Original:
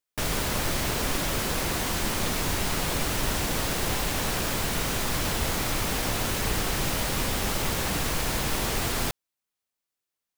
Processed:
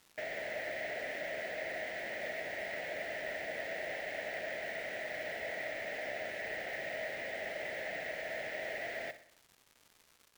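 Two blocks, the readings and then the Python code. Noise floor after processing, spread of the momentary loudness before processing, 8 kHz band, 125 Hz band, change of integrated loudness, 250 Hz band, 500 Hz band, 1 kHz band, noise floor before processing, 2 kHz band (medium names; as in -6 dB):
-67 dBFS, 0 LU, -27.5 dB, -29.5 dB, -12.0 dB, -21.5 dB, -6.0 dB, -14.5 dB, under -85 dBFS, -5.5 dB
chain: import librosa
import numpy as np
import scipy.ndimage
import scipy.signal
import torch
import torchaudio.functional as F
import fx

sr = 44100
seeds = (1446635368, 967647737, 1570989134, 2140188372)

p1 = fx.double_bandpass(x, sr, hz=1100.0, octaves=1.6)
p2 = fx.dmg_crackle(p1, sr, seeds[0], per_s=480.0, level_db=-51.0)
p3 = np.repeat(p2[::2], 2)[:len(p2)]
y = p3 + fx.echo_feedback(p3, sr, ms=62, feedback_pct=51, wet_db=-13.5, dry=0)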